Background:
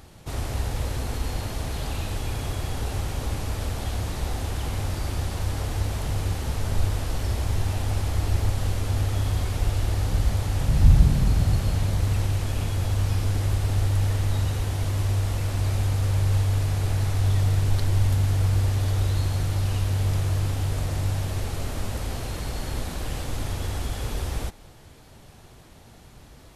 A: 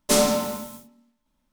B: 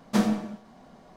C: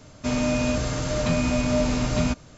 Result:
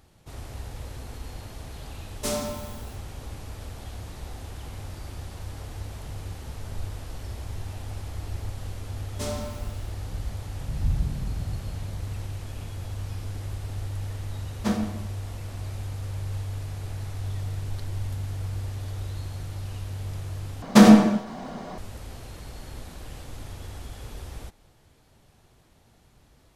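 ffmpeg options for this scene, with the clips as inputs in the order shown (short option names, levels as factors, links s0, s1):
-filter_complex "[1:a]asplit=2[s0][s1];[2:a]asplit=2[s2][s3];[0:a]volume=0.316[s4];[s1]highshelf=f=8900:g=-7.5[s5];[s3]alimiter=level_in=6.31:limit=0.891:release=50:level=0:latency=1[s6];[s4]asplit=2[s7][s8];[s7]atrim=end=20.624[s9];[s6]atrim=end=1.16,asetpts=PTS-STARTPTS,volume=0.891[s10];[s8]atrim=start=21.776[s11];[s0]atrim=end=1.52,asetpts=PTS-STARTPTS,volume=0.316,afade=t=in:d=0.004:c=hsin,afade=t=out:st=1.516:d=0.004:c=hsin,adelay=2140[s12];[s5]atrim=end=1.52,asetpts=PTS-STARTPTS,volume=0.211,afade=t=in:d=0.004:c=hsin,afade=t=out:st=1.516:d=0.004:c=hsin,adelay=9100[s13];[s2]atrim=end=1.16,asetpts=PTS-STARTPTS,volume=0.708,afade=t=in:d=0.004:c=hsin,afade=t=out:st=1.156:d=0.004:c=hsin,adelay=14510[s14];[s9][s10]acrossfade=d=0.004:c1=hsin:c2=hsin[s15];[s15][s11]acrossfade=d=0.004:c1=hsin:c2=hsin[s16];[s16][s12][s13][s14]amix=inputs=4:normalize=0"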